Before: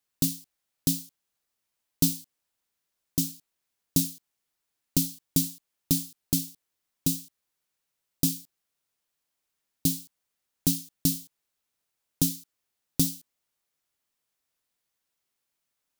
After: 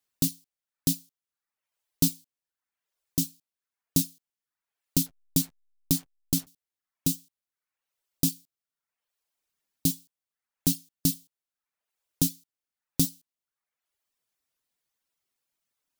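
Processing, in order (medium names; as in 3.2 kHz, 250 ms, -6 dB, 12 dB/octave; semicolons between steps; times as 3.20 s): reverb removal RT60 0.81 s; 5.06–6.47 s: hysteresis with a dead band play -39 dBFS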